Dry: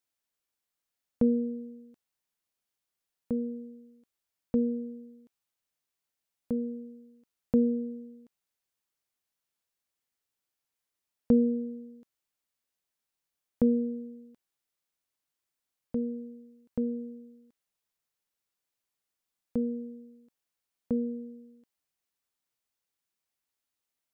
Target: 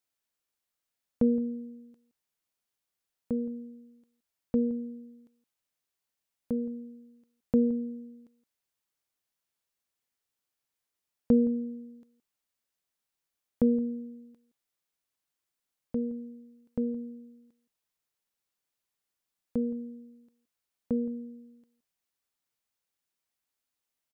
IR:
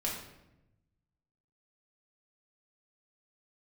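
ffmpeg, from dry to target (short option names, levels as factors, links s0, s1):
-filter_complex "[0:a]asplit=2[s0][s1];[s1]adelay=169.1,volume=0.126,highshelf=f=4000:g=-3.8[s2];[s0][s2]amix=inputs=2:normalize=0"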